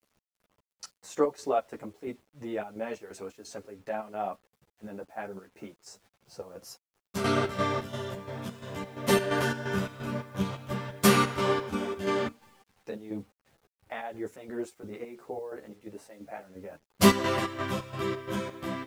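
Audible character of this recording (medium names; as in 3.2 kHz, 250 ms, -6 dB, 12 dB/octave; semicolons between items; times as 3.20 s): chopped level 2.9 Hz, depth 65%, duty 60%; a quantiser's noise floor 10-bit, dither none; a shimmering, thickened sound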